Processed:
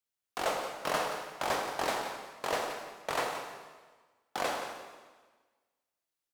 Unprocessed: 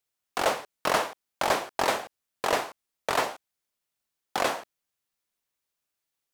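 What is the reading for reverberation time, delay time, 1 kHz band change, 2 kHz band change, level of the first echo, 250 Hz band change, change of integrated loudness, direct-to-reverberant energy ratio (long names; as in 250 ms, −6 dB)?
1.4 s, 175 ms, −5.5 dB, −5.5 dB, −10.5 dB, −5.5 dB, −6.0 dB, 2.0 dB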